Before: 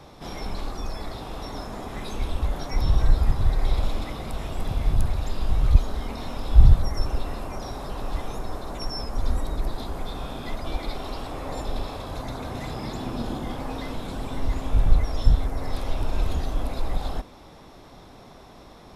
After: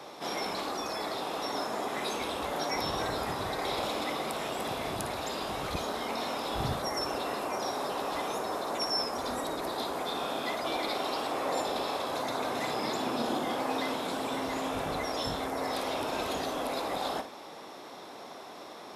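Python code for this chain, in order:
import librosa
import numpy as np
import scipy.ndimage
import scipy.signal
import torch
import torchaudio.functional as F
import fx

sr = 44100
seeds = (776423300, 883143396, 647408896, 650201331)

y = scipy.signal.sosfilt(scipy.signal.butter(2, 350.0, 'highpass', fs=sr, output='sos'), x)
y = fx.room_flutter(y, sr, wall_m=9.7, rt60_s=0.29)
y = F.gain(torch.from_numpy(y), 4.0).numpy()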